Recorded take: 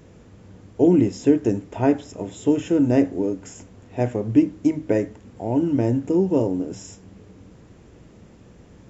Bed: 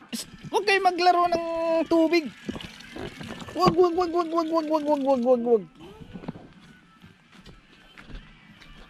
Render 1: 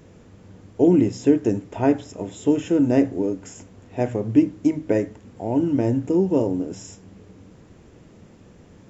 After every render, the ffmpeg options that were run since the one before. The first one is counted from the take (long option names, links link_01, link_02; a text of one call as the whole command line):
ffmpeg -i in.wav -af "bandreject=frequency=60:width_type=h:width=4,bandreject=frequency=120:width_type=h:width=4" out.wav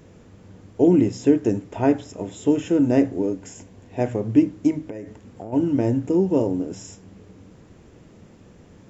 ffmpeg -i in.wav -filter_complex "[0:a]asettb=1/sr,asplit=3[link_01][link_02][link_03];[link_01]atrim=end=3.364[link_04];[link_02]atrim=start=3.36:end=3.99,asetpts=PTS-STARTPTS,afade=type=in:duration=0.004:curve=qsin,afade=type=out:start_time=0.626:duration=0.004:curve=qsin,bandreject=frequency=1300:width=6.5[link_05];[link_03]atrim=start=3.986[link_06];[link_04][link_05]acrossfade=duration=0.004:curve1=hsin:curve2=qsin[link_07];[link_07][link_06]acrossfade=duration=0.004:curve1=qsin:curve2=hsin,asplit=3[link_08][link_09][link_10];[link_08]afade=type=out:start_time=4.82:duration=0.02[link_11];[link_09]acompressor=threshold=-29dB:ratio=12:attack=3.2:release=140:knee=1:detection=peak,afade=type=in:start_time=4.82:duration=0.02,afade=type=out:start_time=5.52:duration=0.02[link_12];[link_10]afade=type=in:start_time=5.52:duration=0.02[link_13];[link_11][link_12][link_13]amix=inputs=3:normalize=0" out.wav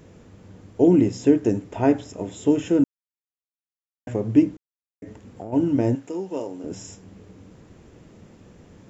ffmpeg -i in.wav -filter_complex "[0:a]asettb=1/sr,asplit=3[link_01][link_02][link_03];[link_01]atrim=end=5.954[link_04];[link_02]atrim=start=5.95:end=6.64,asetpts=PTS-STARTPTS,afade=type=in:duration=0.004:curve=qsin,afade=type=out:start_time=0.686:duration=0.004:curve=qsin,highpass=frequency=1100:poles=1[link_05];[link_03]atrim=start=6.636[link_06];[link_04][link_05]acrossfade=duration=0.004:curve1=hsin:curve2=qsin[link_07];[link_07][link_06]acrossfade=duration=0.004:curve1=qsin:curve2=hsin,asplit=5[link_08][link_09][link_10][link_11][link_12];[link_08]atrim=end=2.84,asetpts=PTS-STARTPTS,afade=type=out:start_time=2.836:duration=0.004:curve=hsin[link_13];[link_09]atrim=start=2.84:end=4.07,asetpts=PTS-STARTPTS,volume=0[link_14];[link_10]atrim=start=4.07:end=4.57,asetpts=PTS-STARTPTS,afade=type=in:duration=0.004:curve=hsin,afade=type=out:start_time=0.496:duration=0.004:curve=hsin[link_15];[link_11]atrim=start=4.57:end=5.02,asetpts=PTS-STARTPTS,volume=0[link_16];[link_12]atrim=start=5.02,asetpts=PTS-STARTPTS,afade=type=in:duration=0.004:curve=hsin[link_17];[link_13][link_14][link_15][link_16][link_17]concat=n=5:v=0:a=1" out.wav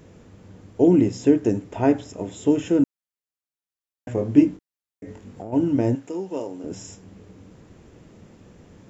ffmpeg -i in.wav -filter_complex "[0:a]asettb=1/sr,asplit=3[link_01][link_02][link_03];[link_01]atrim=end=4.154[link_04];[link_02]atrim=start=4.15:end=5.42,asetpts=PTS-STARTPTS,afade=type=in:duration=0.004:curve=qsin,afade=type=out:start_time=1.266:duration=0.004:curve=qsin,asplit=2[link_05][link_06];[link_06]adelay=21,volume=-4dB[link_07];[link_05][link_07]amix=inputs=2:normalize=0,atrim=end_sample=56007[link_08];[link_03]atrim=start=5.416[link_09];[link_04][link_08]acrossfade=duration=0.004:curve1=hsin:curve2=qsin[link_10];[link_10][link_09]acrossfade=duration=0.004:curve1=qsin:curve2=hsin" out.wav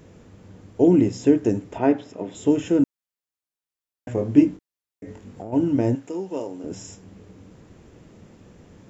ffmpeg -i in.wav -filter_complex "[0:a]asettb=1/sr,asplit=3[link_01][link_02][link_03];[link_01]atrim=end=1.784[link_04];[link_02]atrim=start=1.78:end=2.35,asetpts=PTS-STARTPTS,afade=type=in:duration=0.004:curve=qsin,afade=type=out:start_time=0.566:duration=0.004:curve=qsin,highpass=170,lowpass=4100[link_05];[link_03]atrim=start=2.346[link_06];[link_04][link_05]acrossfade=duration=0.004:curve1=hsin:curve2=qsin[link_07];[link_07][link_06]acrossfade=duration=0.004:curve1=qsin:curve2=hsin" out.wav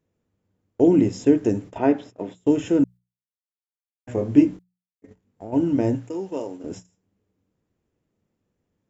ffmpeg -i in.wav -af "agate=range=-27dB:threshold=-35dB:ratio=16:detection=peak,bandreject=frequency=60:width_type=h:width=6,bandreject=frequency=120:width_type=h:width=6,bandreject=frequency=180:width_type=h:width=6" out.wav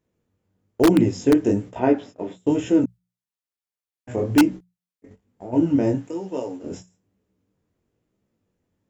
ffmpeg -i in.wav -filter_complex "[0:a]flanger=delay=15.5:depth=7.6:speed=1.1,asplit=2[link_01][link_02];[link_02]aeval=exprs='(mod(3.55*val(0)+1,2)-1)/3.55':channel_layout=same,volume=-4dB[link_03];[link_01][link_03]amix=inputs=2:normalize=0" out.wav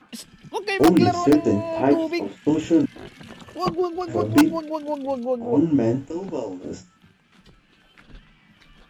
ffmpeg -i in.wav -i bed.wav -filter_complex "[1:a]volume=-4dB[link_01];[0:a][link_01]amix=inputs=2:normalize=0" out.wav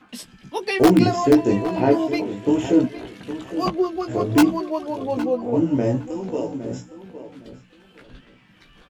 ffmpeg -i in.wav -filter_complex "[0:a]asplit=2[link_01][link_02];[link_02]adelay=16,volume=-6dB[link_03];[link_01][link_03]amix=inputs=2:normalize=0,asplit=2[link_04][link_05];[link_05]adelay=812,lowpass=frequency=2600:poles=1,volume=-12dB,asplit=2[link_06][link_07];[link_07]adelay=812,lowpass=frequency=2600:poles=1,volume=0.22,asplit=2[link_08][link_09];[link_09]adelay=812,lowpass=frequency=2600:poles=1,volume=0.22[link_10];[link_04][link_06][link_08][link_10]amix=inputs=4:normalize=0" out.wav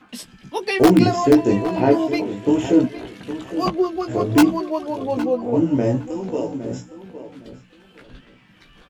ffmpeg -i in.wav -af "volume=1.5dB,alimiter=limit=-2dB:level=0:latency=1" out.wav